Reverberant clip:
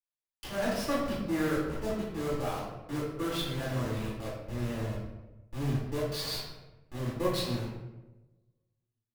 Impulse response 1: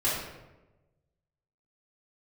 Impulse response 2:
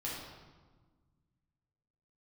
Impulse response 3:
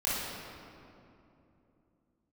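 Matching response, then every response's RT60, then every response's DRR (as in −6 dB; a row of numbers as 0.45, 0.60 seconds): 1; 1.1, 1.4, 2.9 seconds; −9.0, −7.0, −9.5 decibels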